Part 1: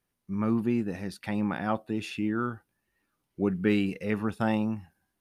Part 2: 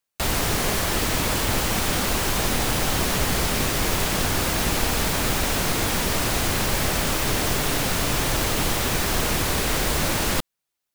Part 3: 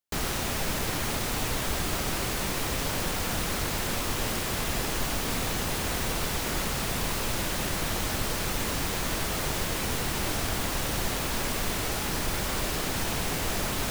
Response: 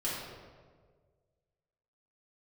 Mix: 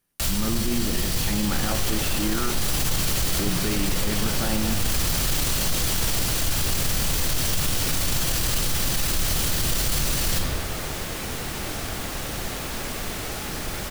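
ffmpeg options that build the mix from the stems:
-filter_complex "[0:a]highshelf=frequency=4100:gain=8.5,alimiter=limit=-19dB:level=0:latency=1,volume=0.5dB,asplit=3[link_01][link_02][link_03];[link_02]volume=-12.5dB[link_04];[1:a]acrossover=split=150|3000[link_05][link_06][link_07];[link_06]acompressor=threshold=-48dB:ratio=2[link_08];[link_05][link_08][link_07]amix=inputs=3:normalize=0,acrusher=bits=4:mix=0:aa=0.000001,volume=-1dB,asplit=2[link_09][link_10];[link_10]volume=-5dB[link_11];[2:a]bandreject=frequency=980:width=14,adelay=1400,volume=-1dB[link_12];[link_03]apad=whole_len=482721[link_13];[link_09][link_13]sidechaincompress=threshold=-46dB:ratio=8:attack=16:release=124[link_14];[3:a]atrim=start_sample=2205[link_15];[link_04][link_11]amix=inputs=2:normalize=0[link_16];[link_16][link_15]afir=irnorm=-1:irlink=0[link_17];[link_01][link_14][link_12][link_17]amix=inputs=4:normalize=0,alimiter=limit=-14dB:level=0:latency=1:release=12"

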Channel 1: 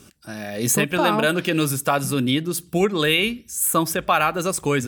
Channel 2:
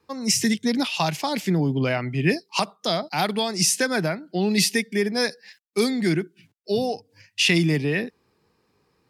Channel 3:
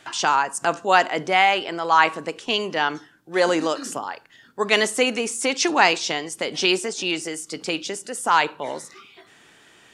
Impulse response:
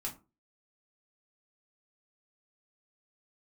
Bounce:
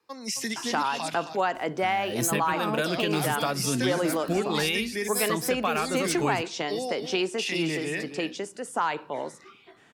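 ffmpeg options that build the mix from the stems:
-filter_complex "[0:a]adelay=1550,volume=-5.5dB[link_01];[1:a]highpass=frequency=490:poles=1,alimiter=limit=-17dB:level=0:latency=1:release=59,volume=-4dB,asplit=3[link_02][link_03][link_04];[link_02]atrim=end=1.14,asetpts=PTS-STARTPTS,afade=type=out:start_time=1.136:duration=0.004:curve=hsin[link_05];[link_03]atrim=start=1.14:end=2.63,asetpts=PTS-STARTPTS,volume=0[link_06];[link_04]atrim=start=2.63,asetpts=PTS-STARTPTS,afade=type=in:duration=0.004:curve=hsin[link_07];[link_05][link_06][link_07]concat=n=3:v=0:a=1,asplit=2[link_08][link_09];[link_09]volume=-9dB[link_10];[2:a]highshelf=frequency=2200:gain=-9,adelay=500,volume=-2dB[link_11];[link_10]aecho=0:1:267:1[link_12];[link_01][link_08][link_11][link_12]amix=inputs=4:normalize=0,acrossover=split=150[link_13][link_14];[link_14]acompressor=threshold=-22dB:ratio=5[link_15];[link_13][link_15]amix=inputs=2:normalize=0"

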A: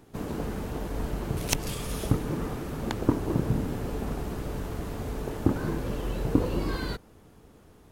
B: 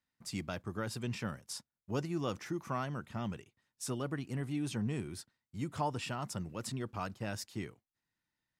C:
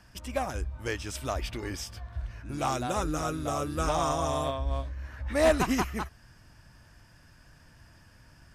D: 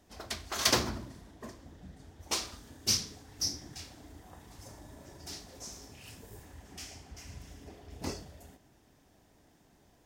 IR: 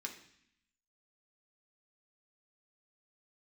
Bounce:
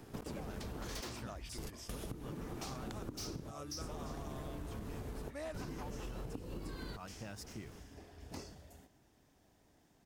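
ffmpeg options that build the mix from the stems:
-filter_complex "[0:a]acrossover=split=390|3000[link_01][link_02][link_03];[link_02]acompressor=threshold=-36dB:ratio=6[link_04];[link_01][link_04][link_03]amix=inputs=3:normalize=0,volume=0.5dB,asplit=3[link_05][link_06][link_07];[link_05]atrim=end=1.01,asetpts=PTS-STARTPTS,afade=type=out:start_time=1.006:duration=0.004:curve=hsin[link_08];[link_06]atrim=start=1.01:end=1.58,asetpts=PTS-STARTPTS,volume=0[link_09];[link_07]atrim=start=1.58,asetpts=PTS-STARTPTS,afade=type=in:duration=0.004:curve=hsin[link_10];[link_08][link_09][link_10]concat=n=3:v=0:a=1[link_11];[1:a]aeval=exprs='val(0)*gte(abs(val(0)),0.00266)':channel_layout=same,volume=-3.5dB,asplit=2[link_12][link_13];[2:a]volume=-9dB[link_14];[3:a]asoftclip=type=hard:threshold=-26dB,adelay=300,volume=-5dB[link_15];[link_13]apad=whole_len=349115[link_16];[link_11][link_16]sidechaingate=range=-33dB:threshold=-60dB:ratio=16:detection=peak[link_17];[link_17][link_12][link_14]amix=inputs=3:normalize=0,acompressor=threshold=-30dB:ratio=6,volume=0dB[link_18];[link_15][link_18]amix=inputs=2:normalize=0,acompressor=threshold=-44dB:ratio=3"

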